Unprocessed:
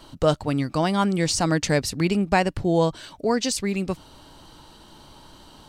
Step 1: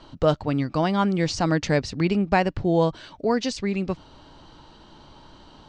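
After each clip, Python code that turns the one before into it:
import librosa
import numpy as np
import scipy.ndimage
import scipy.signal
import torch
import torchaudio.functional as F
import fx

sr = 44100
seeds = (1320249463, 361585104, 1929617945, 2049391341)

y = scipy.signal.sosfilt(scipy.signal.butter(4, 6600.0, 'lowpass', fs=sr, output='sos'), x)
y = fx.high_shelf(y, sr, hz=4800.0, db=-8.5)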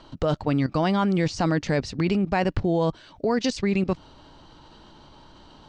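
y = fx.level_steps(x, sr, step_db=14)
y = F.gain(torch.from_numpy(y), 6.5).numpy()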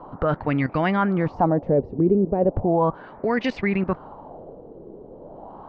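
y = fx.dmg_noise_band(x, sr, seeds[0], low_hz=130.0, high_hz=920.0, level_db=-46.0)
y = fx.filter_lfo_lowpass(y, sr, shape='sine', hz=0.36, low_hz=410.0, high_hz=2200.0, q=2.7)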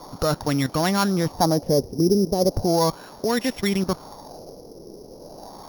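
y = np.r_[np.sort(x[:len(x) // 8 * 8].reshape(-1, 8), axis=1).ravel(), x[len(x) // 8 * 8:]]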